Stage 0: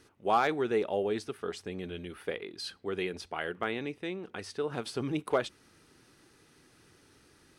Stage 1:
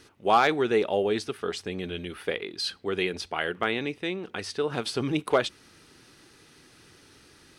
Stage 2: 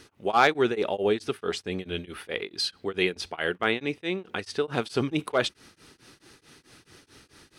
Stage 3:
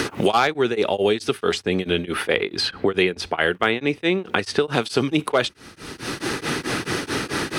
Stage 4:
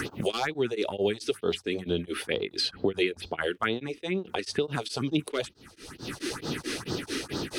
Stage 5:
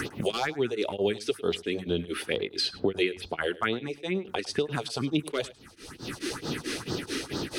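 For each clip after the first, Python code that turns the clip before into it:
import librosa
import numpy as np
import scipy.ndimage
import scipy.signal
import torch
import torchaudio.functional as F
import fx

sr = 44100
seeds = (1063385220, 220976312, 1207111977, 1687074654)

y1 = fx.peak_eq(x, sr, hz=3700.0, db=4.5, octaves=1.8)
y1 = y1 * 10.0 ** (5.0 / 20.0)
y2 = y1 * np.abs(np.cos(np.pi * 4.6 * np.arange(len(y1)) / sr))
y2 = y2 * 10.0 ** (3.5 / 20.0)
y3 = fx.band_squash(y2, sr, depth_pct=100)
y3 = y3 * 10.0 ** (6.5 / 20.0)
y4 = fx.phaser_stages(y3, sr, stages=4, low_hz=120.0, high_hz=2200.0, hz=2.2, feedback_pct=30)
y4 = y4 * 10.0 ** (-6.0 / 20.0)
y5 = y4 + 10.0 ** (-19.0 / 20.0) * np.pad(y4, (int(104 * sr / 1000.0), 0))[:len(y4)]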